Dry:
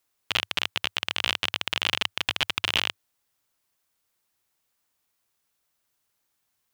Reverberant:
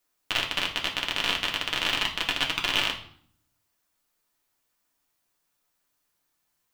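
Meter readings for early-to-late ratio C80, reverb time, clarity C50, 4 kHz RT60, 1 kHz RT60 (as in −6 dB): 14.0 dB, 0.55 s, 10.0 dB, 0.50 s, 0.55 s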